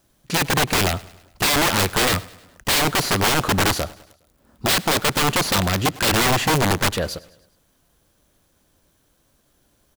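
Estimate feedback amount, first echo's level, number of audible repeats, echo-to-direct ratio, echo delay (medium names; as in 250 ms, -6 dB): 52%, -21.0 dB, 3, -19.5 dB, 103 ms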